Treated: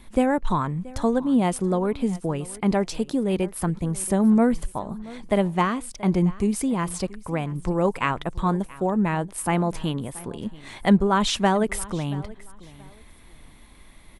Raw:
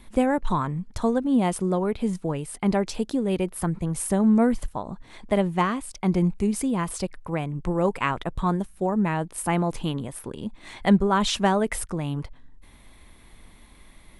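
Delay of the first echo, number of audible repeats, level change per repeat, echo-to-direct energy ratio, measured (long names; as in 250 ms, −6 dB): 679 ms, 2, −12.0 dB, −19.5 dB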